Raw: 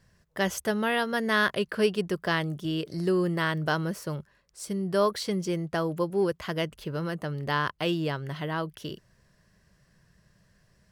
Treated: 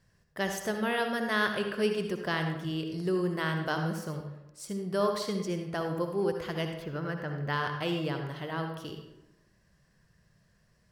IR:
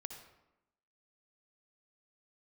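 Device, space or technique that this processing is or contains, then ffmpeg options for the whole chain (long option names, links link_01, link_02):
bathroom: -filter_complex "[1:a]atrim=start_sample=2205[link_01];[0:a][link_01]afir=irnorm=-1:irlink=0,asettb=1/sr,asplit=3[link_02][link_03][link_04];[link_02]atrim=end=6.824[link_05];[link_03]atrim=start=6.82:end=7.53,asetpts=PTS-STARTPTS,afade=type=in:duration=0.004:curve=qsin,afade=type=out:start_time=0.706:duration=0.004:curve=qsin,equalizer=frequency=1600:width_type=o:width=0.67:gain=5,equalizer=frequency=4000:width_type=o:width=0.67:gain=-5,equalizer=frequency=10000:width_type=o:width=0.67:gain=-12[link_06];[link_04]atrim=start=7.526[link_07];[link_05][link_06]acrossfade=duration=0.004:curve1=hsin:curve2=qsin[link_08];[link_08][link_07]acrossfade=duration=0.004:curve1=qsin:curve2=hsin"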